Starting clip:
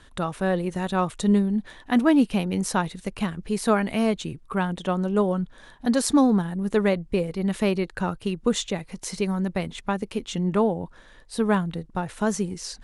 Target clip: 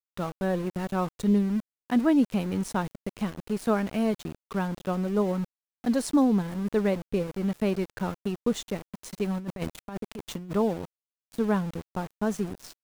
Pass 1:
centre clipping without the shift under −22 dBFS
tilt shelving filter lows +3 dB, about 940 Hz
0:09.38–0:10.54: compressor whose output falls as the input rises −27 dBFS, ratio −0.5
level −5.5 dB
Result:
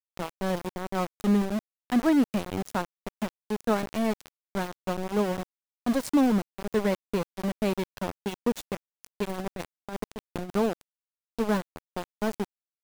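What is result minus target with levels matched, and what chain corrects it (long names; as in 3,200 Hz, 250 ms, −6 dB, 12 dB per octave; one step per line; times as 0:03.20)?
centre clipping without the shift: distortion +11 dB
centre clipping without the shift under −31 dBFS
tilt shelving filter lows +3 dB, about 940 Hz
0:09.38–0:10.54: compressor whose output falls as the input rises −27 dBFS, ratio −0.5
level −5.5 dB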